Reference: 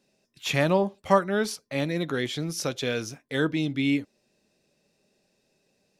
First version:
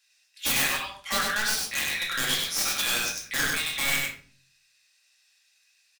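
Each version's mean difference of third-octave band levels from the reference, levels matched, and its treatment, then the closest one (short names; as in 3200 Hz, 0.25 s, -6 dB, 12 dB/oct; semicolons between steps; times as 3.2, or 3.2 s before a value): 15.5 dB: HPF 1500 Hz 24 dB/oct; wrapped overs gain 26.5 dB; echo 98 ms -3 dB; shoebox room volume 430 m³, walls furnished, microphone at 2.3 m; gain +5 dB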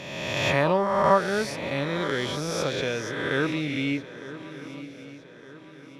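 8.0 dB: spectral swells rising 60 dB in 1.61 s; LPF 2900 Hz 6 dB/oct; on a send: swung echo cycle 1.212 s, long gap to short 3:1, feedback 43%, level -16.5 dB; on the sum: dynamic EQ 240 Hz, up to -4 dB, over -35 dBFS, Q 0.86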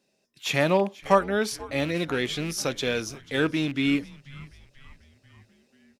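3.0 dB: rattling part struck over -30 dBFS, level -29 dBFS; low shelf 130 Hz -8 dB; AGC gain up to 3 dB; frequency-shifting echo 0.488 s, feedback 54%, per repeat -130 Hz, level -20 dB; gain -1 dB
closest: third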